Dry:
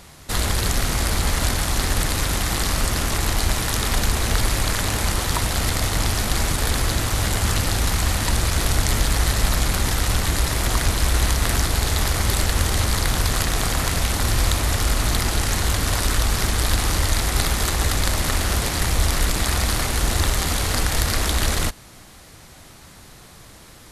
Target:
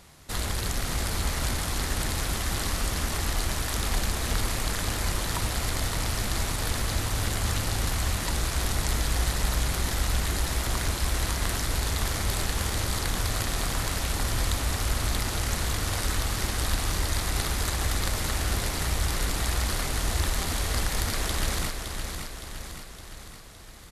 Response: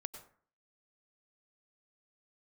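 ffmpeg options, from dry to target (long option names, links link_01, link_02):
-af "aecho=1:1:564|1128|1692|2256|2820|3384|3948:0.473|0.265|0.148|0.0831|0.0465|0.0261|0.0146,volume=-8dB"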